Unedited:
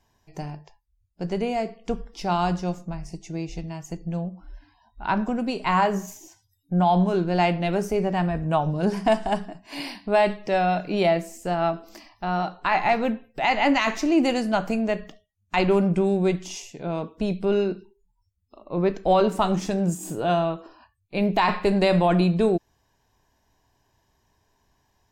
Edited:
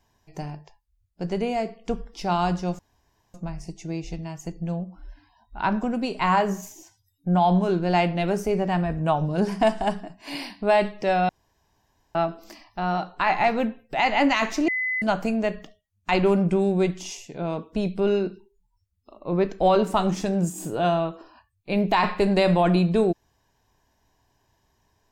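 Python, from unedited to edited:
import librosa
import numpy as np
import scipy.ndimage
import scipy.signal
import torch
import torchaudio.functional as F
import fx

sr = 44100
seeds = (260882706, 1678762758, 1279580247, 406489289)

y = fx.edit(x, sr, fx.insert_room_tone(at_s=2.79, length_s=0.55),
    fx.room_tone_fill(start_s=10.74, length_s=0.86),
    fx.bleep(start_s=14.13, length_s=0.34, hz=2020.0, db=-23.0), tone=tone)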